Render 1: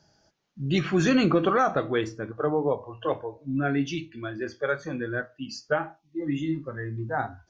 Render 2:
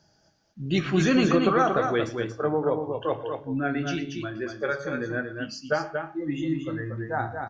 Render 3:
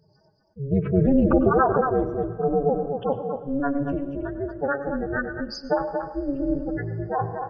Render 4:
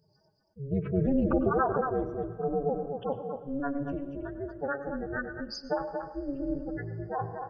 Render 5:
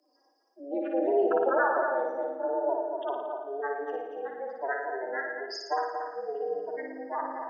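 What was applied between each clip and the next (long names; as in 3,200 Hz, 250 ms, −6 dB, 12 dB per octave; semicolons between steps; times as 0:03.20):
hum removal 139.4 Hz, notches 33; on a send: multi-tap delay 117/232 ms −18/−5.5 dB
expanding power law on the bin magnitudes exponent 3; amplitude modulation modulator 280 Hz, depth 80%; on a send at −13 dB: convolution reverb, pre-delay 93 ms; on the sum: level +7 dB
high-shelf EQ 4,100 Hz +6.5 dB; level −7.5 dB
high-pass filter 210 Hz 12 dB per octave; frequency shifter +150 Hz; flutter between parallel walls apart 9.7 metres, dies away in 0.8 s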